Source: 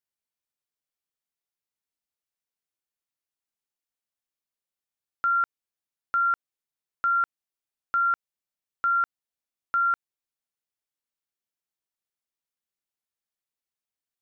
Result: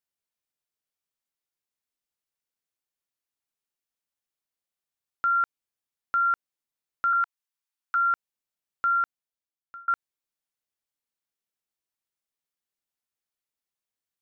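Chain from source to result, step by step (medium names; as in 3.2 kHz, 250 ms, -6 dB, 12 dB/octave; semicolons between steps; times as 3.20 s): 7.13–7.95 s: steep high-pass 850 Hz 48 dB/octave; 8.92–9.88 s: fade out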